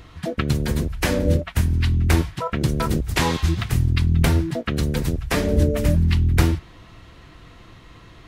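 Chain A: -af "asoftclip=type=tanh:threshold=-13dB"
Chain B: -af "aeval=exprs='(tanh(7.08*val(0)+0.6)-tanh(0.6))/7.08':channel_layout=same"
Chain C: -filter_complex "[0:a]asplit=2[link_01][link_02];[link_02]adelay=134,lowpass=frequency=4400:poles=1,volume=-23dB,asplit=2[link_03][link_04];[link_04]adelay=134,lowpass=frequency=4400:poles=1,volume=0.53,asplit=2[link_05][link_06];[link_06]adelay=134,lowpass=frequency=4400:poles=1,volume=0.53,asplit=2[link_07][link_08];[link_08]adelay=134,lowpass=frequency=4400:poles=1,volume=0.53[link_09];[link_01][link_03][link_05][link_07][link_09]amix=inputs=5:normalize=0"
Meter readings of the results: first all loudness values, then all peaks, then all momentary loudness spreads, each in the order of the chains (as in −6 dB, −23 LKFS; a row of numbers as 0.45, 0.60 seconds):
−23.5, −26.0, −21.5 LKFS; −13.0, −13.5, −3.5 dBFS; 4, 5, 6 LU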